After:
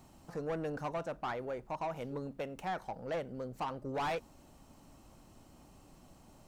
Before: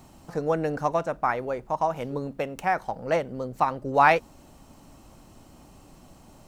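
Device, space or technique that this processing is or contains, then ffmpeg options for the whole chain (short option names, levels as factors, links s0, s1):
saturation between pre-emphasis and de-emphasis: -af "highshelf=f=4700:g=9,asoftclip=type=tanh:threshold=0.0631,highshelf=f=4700:g=-9,volume=0.422"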